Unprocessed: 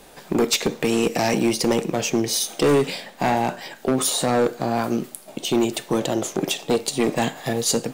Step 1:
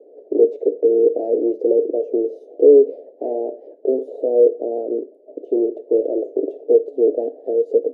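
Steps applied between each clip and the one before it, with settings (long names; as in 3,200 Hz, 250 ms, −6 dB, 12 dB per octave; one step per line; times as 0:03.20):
elliptic band-pass filter 280–640 Hz, stop band 40 dB
parametric band 450 Hz +14.5 dB 0.59 octaves
level −3 dB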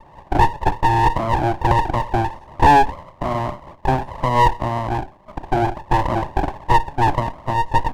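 lower of the sound and its delayed copy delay 1.1 ms
level +4.5 dB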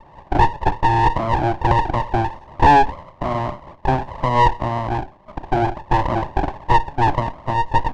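low-pass filter 6,000 Hz 12 dB per octave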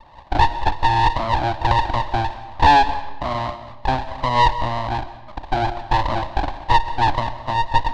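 graphic EQ with 15 bands 160 Hz −9 dB, 400 Hz −9 dB, 4,000 Hz +10 dB
comb and all-pass reverb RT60 0.99 s, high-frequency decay 0.8×, pre-delay 95 ms, DRR 13.5 dB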